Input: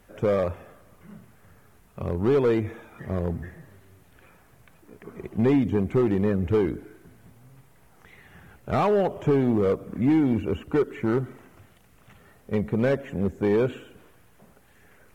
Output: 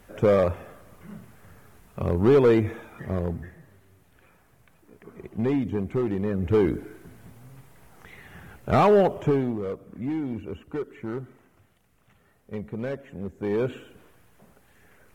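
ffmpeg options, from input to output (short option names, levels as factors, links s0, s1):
-af "volume=8.91,afade=t=out:st=2.69:d=0.86:silence=0.421697,afade=t=in:st=6.29:d=0.48:silence=0.398107,afade=t=out:st=8.98:d=0.59:silence=0.237137,afade=t=in:st=13.34:d=0.41:silence=0.421697"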